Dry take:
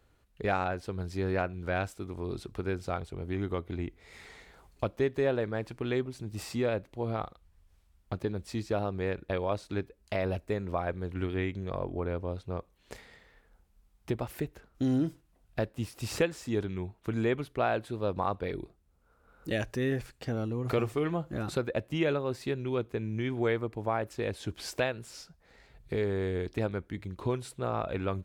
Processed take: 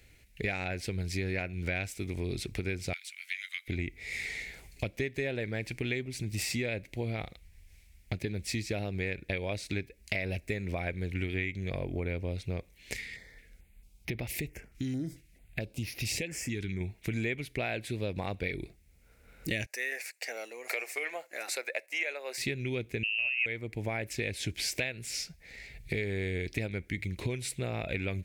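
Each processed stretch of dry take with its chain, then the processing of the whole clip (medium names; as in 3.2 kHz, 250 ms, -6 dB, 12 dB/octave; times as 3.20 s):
2.93–3.68 s: Bessel high-pass 2.6 kHz, order 8 + three bands compressed up and down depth 100%
12.94–16.81 s: treble shelf 11 kHz -4 dB + compression 2:1, threshold -37 dBFS + step-sequenced notch 4.5 Hz 640–7900 Hz
19.66–22.38 s: high-pass 580 Hz 24 dB/octave + gate -56 dBFS, range -6 dB + peaking EQ 3.3 kHz -11 dB 0.57 oct
23.03–23.46 s: high-pass 120 Hz + frequency inversion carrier 2.9 kHz
whole clip: FFT filter 120 Hz 0 dB, 680 Hz -6 dB, 1.2 kHz -16 dB, 2.2 kHz +13 dB, 3.1 kHz +3 dB, 5.6 kHz +6 dB; compression 4:1, threshold -38 dBFS; trim +7 dB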